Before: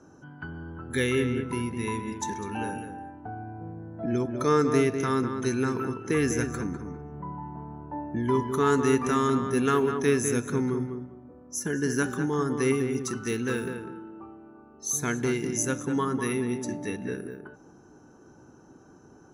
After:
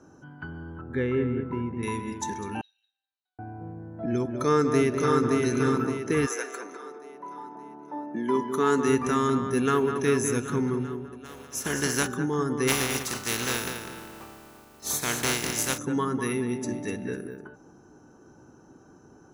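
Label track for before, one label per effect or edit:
0.810000	1.830000	LPF 1400 Hz
2.610000	3.390000	Butterworth band-pass 4000 Hz, Q 5.4
4.240000	5.270000	echo throw 0.57 s, feedback 45%, level -3 dB
6.250000	8.870000	HPF 500 Hz -> 150 Hz 24 dB/oct
9.560000	9.990000	echo throw 0.39 s, feedback 65%, level -10.5 dB
11.240000	12.060000	spectral contrast lowered exponent 0.54
12.670000	15.770000	spectral contrast lowered exponent 0.36
16.370000	16.780000	echo throw 0.25 s, feedback 30%, level -11 dB

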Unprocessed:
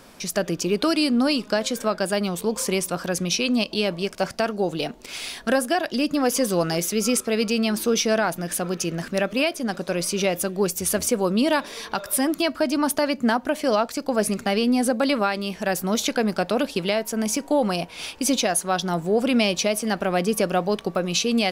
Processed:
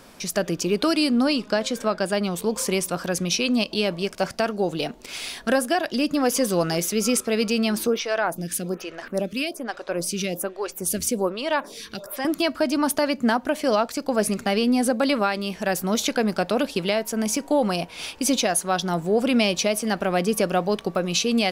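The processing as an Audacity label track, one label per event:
1.240000	2.310000	high shelf 9400 Hz -8.5 dB
7.870000	12.250000	photocell phaser 1.2 Hz

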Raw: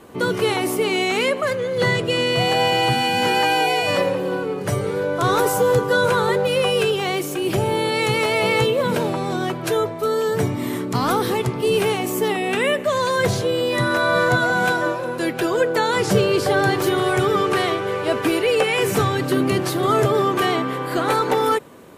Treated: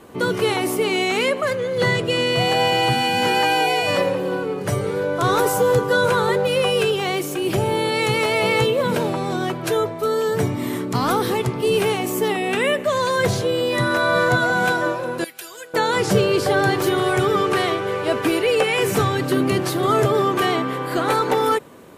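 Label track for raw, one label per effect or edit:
15.240000	15.740000	pre-emphasis coefficient 0.97

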